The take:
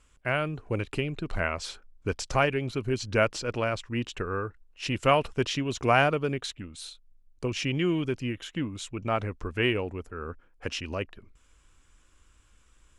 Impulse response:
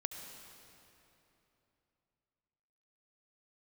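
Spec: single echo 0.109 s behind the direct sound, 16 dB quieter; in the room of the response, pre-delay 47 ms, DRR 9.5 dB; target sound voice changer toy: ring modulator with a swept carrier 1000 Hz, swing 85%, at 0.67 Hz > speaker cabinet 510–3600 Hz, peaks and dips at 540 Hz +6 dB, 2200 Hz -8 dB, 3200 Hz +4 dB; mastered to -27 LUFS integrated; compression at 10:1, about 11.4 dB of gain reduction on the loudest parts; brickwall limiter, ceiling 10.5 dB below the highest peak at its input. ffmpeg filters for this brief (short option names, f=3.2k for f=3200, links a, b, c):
-filter_complex "[0:a]acompressor=threshold=-28dB:ratio=10,alimiter=level_in=5dB:limit=-24dB:level=0:latency=1,volume=-5dB,aecho=1:1:109:0.158,asplit=2[a][b];[1:a]atrim=start_sample=2205,adelay=47[c];[b][c]afir=irnorm=-1:irlink=0,volume=-9dB[d];[a][d]amix=inputs=2:normalize=0,aeval=exprs='val(0)*sin(2*PI*1000*n/s+1000*0.85/0.67*sin(2*PI*0.67*n/s))':c=same,highpass=510,equalizer=f=540:t=q:w=4:g=6,equalizer=f=2.2k:t=q:w=4:g=-8,equalizer=f=3.2k:t=q:w=4:g=4,lowpass=f=3.6k:w=0.5412,lowpass=f=3.6k:w=1.3066,volume=15.5dB"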